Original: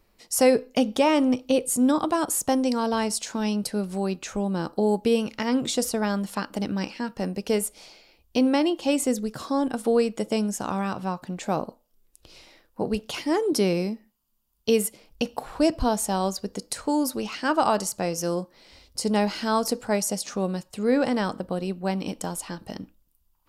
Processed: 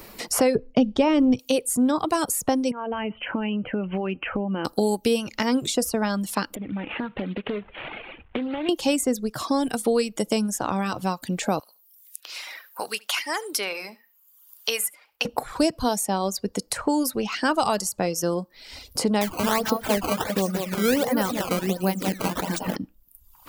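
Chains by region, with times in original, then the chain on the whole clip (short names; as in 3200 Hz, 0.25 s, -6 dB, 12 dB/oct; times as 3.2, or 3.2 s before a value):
0.55–1.39 LPF 5000 Hz + tilt -3.5 dB/oct
2.71–4.65 Chebyshev low-pass 3100 Hz, order 10 + compressor 10:1, threshold -28 dBFS
6.55–8.69 CVSD 16 kbps + compressor 5:1, threshold -36 dBFS + Doppler distortion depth 0.21 ms
11.59–15.25 HPF 1400 Hz + high shelf 10000 Hz +6 dB + echo 72 ms -14 dB
19.21–22.76 feedback echo 0.181 s, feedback 43%, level -5 dB + upward compressor, threshold -28 dBFS + decimation with a swept rate 14×, swing 160% 1.4 Hz
whole clip: reverb removal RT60 0.69 s; high shelf 11000 Hz +8.5 dB; three-band squash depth 70%; gain +1.5 dB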